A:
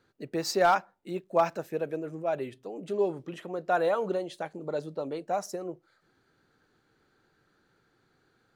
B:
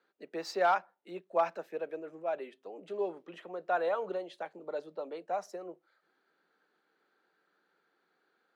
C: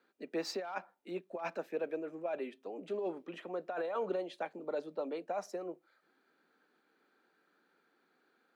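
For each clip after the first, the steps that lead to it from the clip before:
elliptic high-pass 170 Hz; three-band isolator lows -12 dB, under 400 Hz, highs -12 dB, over 4.3 kHz; trim -3 dB
compressor with a negative ratio -34 dBFS, ratio -1; small resonant body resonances 250/2400 Hz, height 8 dB, ringing for 35 ms; trim -2 dB

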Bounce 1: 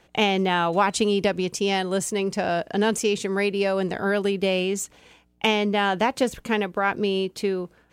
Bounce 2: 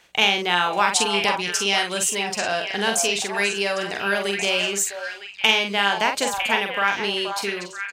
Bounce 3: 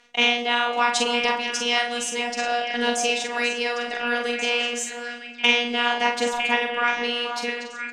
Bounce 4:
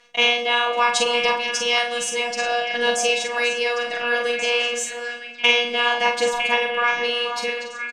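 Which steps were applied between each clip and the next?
tilt shelf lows -8.5 dB, about 830 Hz; doubling 45 ms -5.5 dB; repeats whose band climbs or falls 478 ms, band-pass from 790 Hz, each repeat 1.4 oct, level -3.5 dB; trim -1 dB
robot voice 240 Hz; distance through air 73 m; on a send at -10 dB: reverberation RT60 3.0 s, pre-delay 4 ms; on the sum: trim +2 dB
comb 6 ms, depth 85%

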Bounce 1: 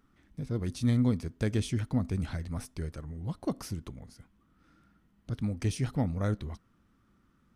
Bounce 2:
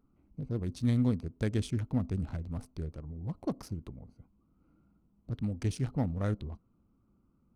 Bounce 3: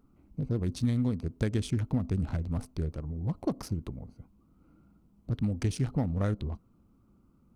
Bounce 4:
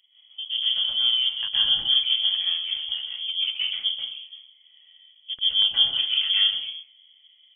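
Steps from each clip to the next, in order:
local Wiener filter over 25 samples; trim -1.5 dB
compression 6:1, threshold -30 dBFS, peak gain reduction 8 dB; trim +6 dB
plate-style reverb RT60 0.52 s, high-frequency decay 1×, pre-delay 115 ms, DRR -7 dB; frequency inversion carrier 3.3 kHz; trim -2.5 dB

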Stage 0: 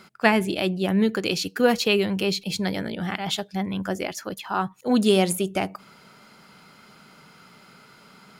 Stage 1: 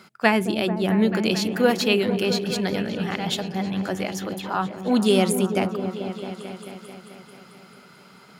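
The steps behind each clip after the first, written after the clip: high-pass 74 Hz; delay with an opening low-pass 220 ms, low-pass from 400 Hz, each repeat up 1 oct, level -6 dB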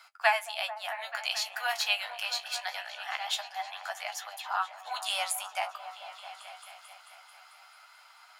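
steep high-pass 670 Hz 72 dB/octave; flange 0.24 Hz, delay 9.3 ms, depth 9.6 ms, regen +34%

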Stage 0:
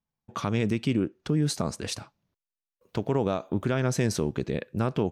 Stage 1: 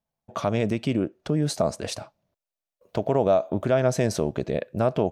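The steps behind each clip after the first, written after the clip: peaking EQ 630 Hz +13.5 dB 0.56 oct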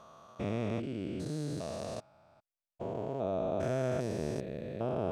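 spectrogram pixelated in time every 400 ms; trim -7 dB

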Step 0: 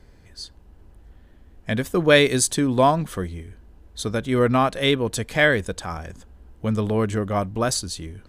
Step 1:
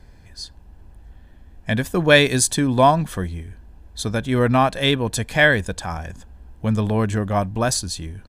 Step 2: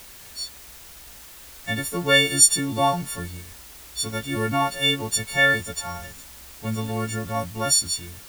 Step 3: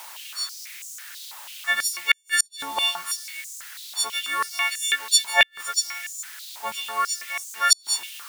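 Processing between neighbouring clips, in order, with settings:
comb 1.2 ms, depth 34%; trim +2 dB
partials quantised in pitch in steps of 4 st; added noise white -37 dBFS; trim -7.5 dB
inverted gate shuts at -8 dBFS, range -42 dB; step-sequenced high-pass 6.1 Hz 890–6900 Hz; trim +2.5 dB

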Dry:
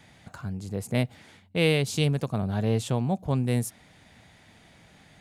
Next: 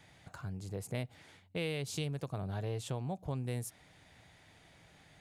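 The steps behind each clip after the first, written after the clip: peaking EQ 220 Hz -13 dB 0.23 oct; compression 3:1, threshold -30 dBFS, peak gain reduction 9 dB; trim -5.5 dB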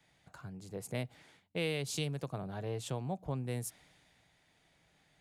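peaking EQ 91 Hz -11 dB 0.41 oct; three bands expanded up and down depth 40%; trim +1 dB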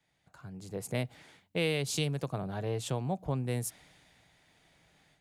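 level rider gain up to 11.5 dB; trim -7 dB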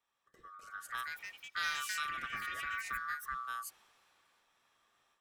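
split-band scrambler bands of 1 kHz; ever faster or slower copies 322 ms, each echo +4 st, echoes 3; trim -8.5 dB

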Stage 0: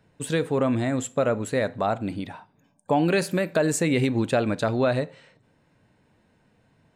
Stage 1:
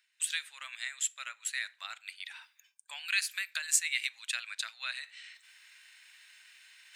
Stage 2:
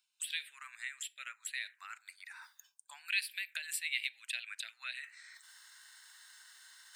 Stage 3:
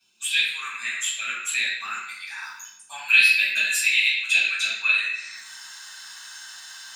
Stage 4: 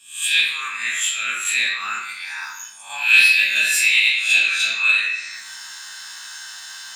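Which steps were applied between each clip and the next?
inverse Chebyshev high-pass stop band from 330 Hz, stop band 80 dB; reverse; upward compressor, threshold -41 dBFS; reverse; transient shaper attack +4 dB, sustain -3 dB
bass shelf 120 Hz -5 dB; reverse; upward compressor, threshold -40 dBFS; reverse; touch-sensitive phaser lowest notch 320 Hz, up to 1.2 kHz, full sweep at -32.5 dBFS; trim -2 dB
small resonant body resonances 210/360/2600 Hz, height 13 dB, ringing for 35 ms; reverberation RT60 0.70 s, pre-delay 3 ms, DRR -11.5 dB
reverse spectral sustain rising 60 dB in 0.44 s; in parallel at -5.5 dB: saturation -16.5 dBFS, distortion -11 dB

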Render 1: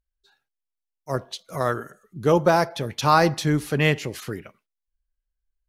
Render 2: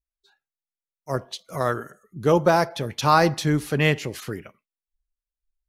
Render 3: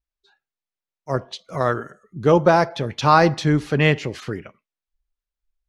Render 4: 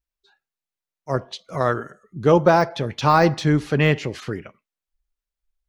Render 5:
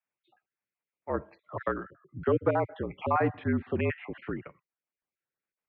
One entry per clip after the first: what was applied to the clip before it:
spectral noise reduction 12 dB
distance through air 90 m; trim +3.5 dB
de-esser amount 60%
random holes in the spectrogram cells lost 33%; mistuned SSB -51 Hz 160–2600 Hz; three bands compressed up and down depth 40%; trim -8 dB

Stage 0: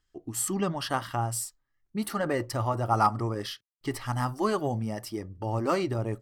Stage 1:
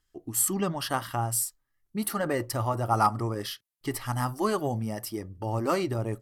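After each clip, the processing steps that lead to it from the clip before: peaking EQ 12 kHz +10 dB 0.75 oct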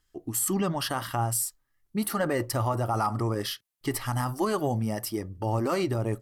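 peak limiter -20.5 dBFS, peak gain reduction 9 dB; trim +3 dB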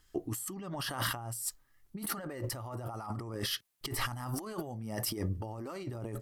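compressor with a negative ratio -37 dBFS, ratio -1; trim -1.5 dB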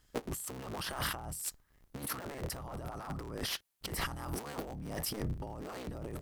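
cycle switcher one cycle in 3, inverted; trim -2 dB

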